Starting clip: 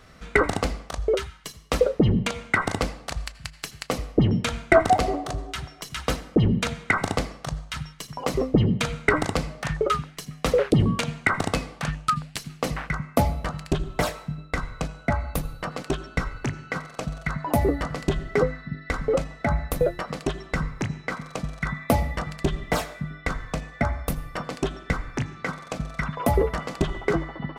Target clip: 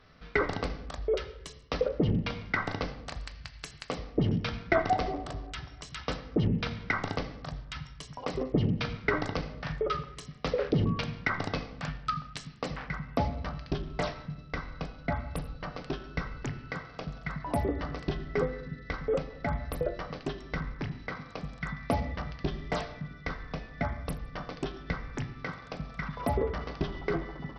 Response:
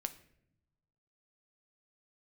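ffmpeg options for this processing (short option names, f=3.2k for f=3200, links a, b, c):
-filter_complex "[1:a]atrim=start_sample=2205,asetrate=34839,aresample=44100[a];[0:a][a]afir=irnorm=-1:irlink=0,volume=-7.5dB" -ar 44100 -c:a sbc -b:a 64k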